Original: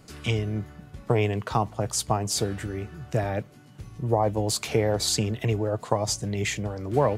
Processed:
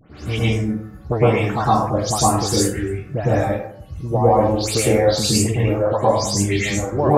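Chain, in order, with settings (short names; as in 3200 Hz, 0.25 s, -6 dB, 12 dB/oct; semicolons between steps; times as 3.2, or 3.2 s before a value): spectral delay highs late, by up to 0.174 s; reverb removal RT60 1.9 s; plate-style reverb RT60 0.72 s, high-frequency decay 0.4×, pre-delay 95 ms, DRR -7.5 dB; gain +2 dB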